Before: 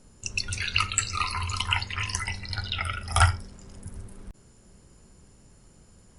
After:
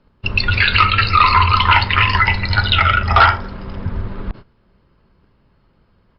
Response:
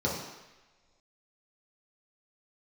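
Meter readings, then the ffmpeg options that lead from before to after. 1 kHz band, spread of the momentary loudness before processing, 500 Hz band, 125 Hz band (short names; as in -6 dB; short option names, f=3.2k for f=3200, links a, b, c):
+17.5 dB, 21 LU, +16.0 dB, +11.5 dB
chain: -filter_complex "[0:a]equalizer=f=1.1k:w=1:g=6,bandreject=f=760:w=12,acrossover=split=280[a][b];[a]acompressor=threshold=-31dB:ratio=6[c];[c][b]amix=inputs=2:normalize=0,aresample=11025,asoftclip=type=tanh:threshold=-19.5dB,aresample=44100,lowpass=f=4.3k:w=0.5412,lowpass=f=4.3k:w=1.3066,asplit=2[d][e];[e]adelay=114,lowpass=f=1.6k:p=1,volume=-21.5dB,asplit=2[f][g];[g]adelay=114,lowpass=f=1.6k:p=1,volume=0.48,asplit=2[h][i];[i]adelay=114,lowpass=f=1.6k:p=1,volume=0.48[j];[d][f][h][j]amix=inputs=4:normalize=0,agate=range=-20dB:threshold=-48dB:ratio=16:detection=peak,alimiter=level_in=19.5dB:limit=-1dB:release=50:level=0:latency=1,volume=-1.5dB" -ar 48000 -c:a libopus -b:a 48k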